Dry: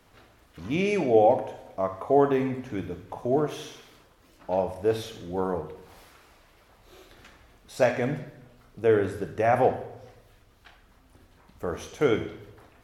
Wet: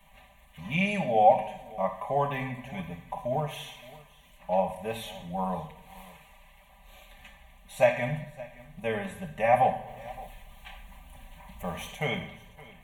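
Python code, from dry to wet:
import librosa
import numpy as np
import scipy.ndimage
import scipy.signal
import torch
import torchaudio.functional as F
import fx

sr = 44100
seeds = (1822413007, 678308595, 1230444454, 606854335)

y = fx.law_mismatch(x, sr, coded='mu', at=(9.86, 11.94), fade=0.02)
y = fx.peak_eq(y, sr, hz=340.0, db=-7.0, octaves=1.4)
y = fx.fixed_phaser(y, sr, hz=1400.0, stages=6)
y = y + 0.99 * np.pad(y, (int(5.1 * sr / 1000.0), 0))[:len(y)]
y = y + 10.0 ** (-20.5 / 20.0) * np.pad(y, (int(568 * sr / 1000.0), 0))[:len(y)]
y = y * librosa.db_to_amplitude(1.5)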